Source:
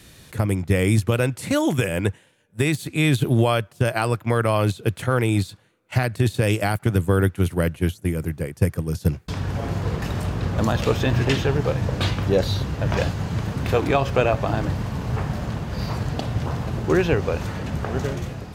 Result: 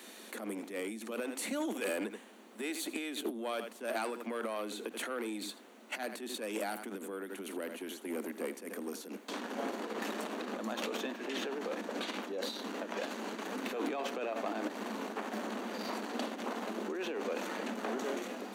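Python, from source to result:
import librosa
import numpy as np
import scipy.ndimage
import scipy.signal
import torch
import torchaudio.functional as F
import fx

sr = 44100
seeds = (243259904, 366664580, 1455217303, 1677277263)

p1 = x + fx.echo_single(x, sr, ms=82, db=-18.5, dry=0)
p2 = fx.dmg_noise_colour(p1, sr, seeds[0], colour='brown', level_db=-41.0)
p3 = fx.over_compress(p2, sr, threshold_db=-25.0, ratio=-1.0)
p4 = 10.0 ** (-21.5 / 20.0) * np.tanh(p3 / 10.0 ** (-21.5 / 20.0))
p5 = scipy.signal.sosfilt(scipy.signal.butter(16, 210.0, 'highpass', fs=sr, output='sos'), p4)
p6 = fx.notch(p5, sr, hz=5100.0, q=9.2)
y = F.gain(torch.from_numpy(p6), -5.5).numpy()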